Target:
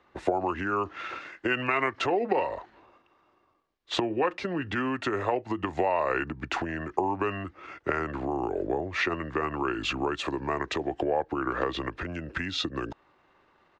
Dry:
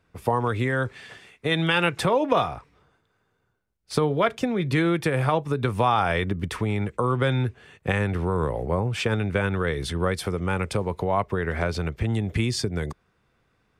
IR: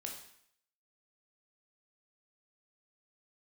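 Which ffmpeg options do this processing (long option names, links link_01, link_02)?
-filter_complex "[0:a]acompressor=threshold=-30dB:ratio=5,asetrate=34006,aresample=44100,atempo=1.29684,acrossover=split=270 5000:gain=0.158 1 0.0891[link_01][link_02][link_03];[link_01][link_02][link_03]amix=inputs=3:normalize=0,volume=8dB"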